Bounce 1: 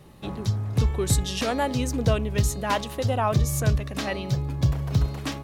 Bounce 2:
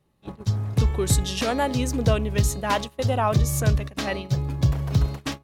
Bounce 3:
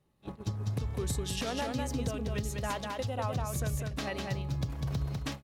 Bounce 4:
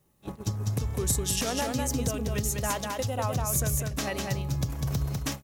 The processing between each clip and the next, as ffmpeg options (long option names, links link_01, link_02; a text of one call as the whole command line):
ffmpeg -i in.wav -af "agate=range=-20dB:threshold=-30dB:ratio=16:detection=peak,volume=1.5dB" out.wav
ffmpeg -i in.wav -af "acompressor=threshold=-27dB:ratio=5,aecho=1:1:200:0.668,volume=-5dB" out.wav
ffmpeg -i in.wav -af "aexciter=amount=2.5:drive=6.4:freq=5600,volume=4dB" out.wav